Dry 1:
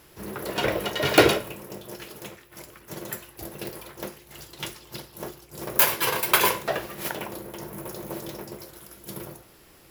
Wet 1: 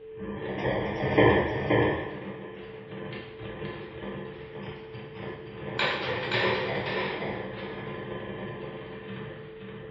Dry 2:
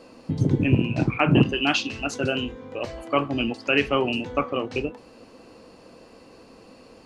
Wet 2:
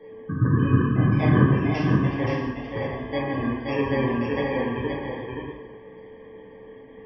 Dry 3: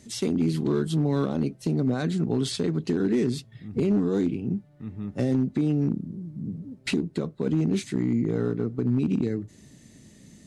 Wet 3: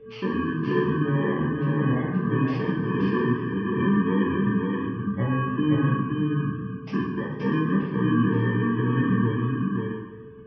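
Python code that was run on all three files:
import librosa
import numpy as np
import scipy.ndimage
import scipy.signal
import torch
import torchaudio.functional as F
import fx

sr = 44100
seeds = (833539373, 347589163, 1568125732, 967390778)

p1 = fx.bit_reversed(x, sr, seeds[0], block=32)
p2 = scipy.signal.sosfilt(scipy.signal.butter(4, 3400.0, 'lowpass', fs=sr, output='sos'), p1)
p3 = fx.spec_gate(p2, sr, threshold_db=-25, keep='strong')
p4 = fx.peak_eq(p3, sr, hz=690.0, db=-2.5, octaves=0.34)
p5 = p4 + 10.0 ** (-45.0 / 20.0) * np.sin(2.0 * np.pi * 440.0 * np.arange(len(p4)) / sr)
p6 = p5 + fx.echo_multitap(p5, sr, ms=(524, 636), db=(-4.0, -14.0), dry=0)
p7 = fx.rev_plate(p6, sr, seeds[1], rt60_s=0.82, hf_ratio=0.8, predelay_ms=0, drr_db=-4.0)
p8 = fx.echo_warbled(p7, sr, ms=147, feedback_pct=61, rate_hz=2.8, cents=122, wet_db=-17.5)
y = p8 * librosa.db_to_amplitude(-4.5)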